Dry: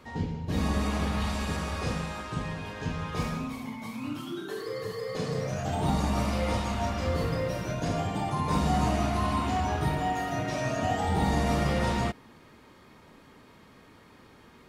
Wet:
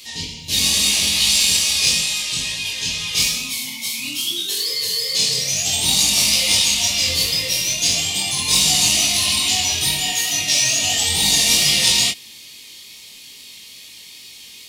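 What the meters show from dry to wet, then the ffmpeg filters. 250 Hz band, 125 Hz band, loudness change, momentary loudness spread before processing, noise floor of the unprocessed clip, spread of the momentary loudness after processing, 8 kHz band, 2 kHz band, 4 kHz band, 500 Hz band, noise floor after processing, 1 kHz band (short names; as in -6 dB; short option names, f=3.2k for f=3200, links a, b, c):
-3.5 dB, -4.5 dB, +14.0 dB, 9 LU, -55 dBFS, 9 LU, +29.0 dB, +13.0 dB, +26.0 dB, -4.0 dB, -41 dBFS, -4.0 dB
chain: -af "aexciter=amount=15.8:drive=9.3:freq=2.4k,flanger=delay=20:depth=3.7:speed=2.3,aeval=exprs='0.944*(cos(1*acos(clip(val(0)/0.944,-1,1)))-cos(1*PI/2))+0.0211*(cos(7*acos(clip(val(0)/0.944,-1,1)))-cos(7*PI/2))':c=same"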